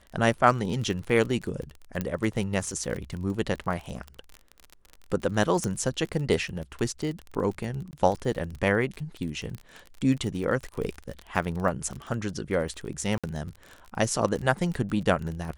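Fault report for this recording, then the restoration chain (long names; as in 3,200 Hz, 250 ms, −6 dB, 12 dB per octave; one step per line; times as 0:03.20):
surface crackle 33 per second −32 dBFS
0:02.01: click −15 dBFS
0:05.64: click −16 dBFS
0:07.91–0:07.93: drop-out 19 ms
0:13.18–0:13.24: drop-out 56 ms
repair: click removal
repair the gap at 0:07.91, 19 ms
repair the gap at 0:13.18, 56 ms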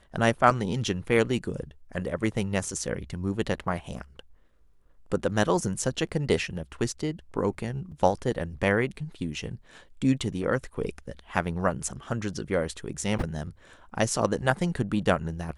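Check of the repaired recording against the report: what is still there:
0:02.01: click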